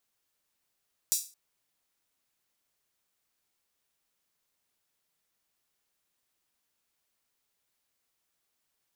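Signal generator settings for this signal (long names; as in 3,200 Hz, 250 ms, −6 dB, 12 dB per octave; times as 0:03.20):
open synth hi-hat length 0.22 s, high-pass 6,000 Hz, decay 0.33 s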